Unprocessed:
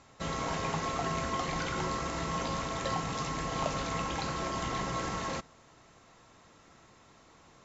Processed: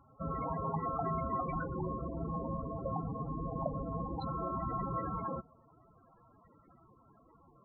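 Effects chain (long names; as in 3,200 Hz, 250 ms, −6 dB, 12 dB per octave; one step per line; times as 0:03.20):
0:01.66–0:04.22: parametric band 1,700 Hz −13 dB 0.93 octaves
spectral peaks only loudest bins 16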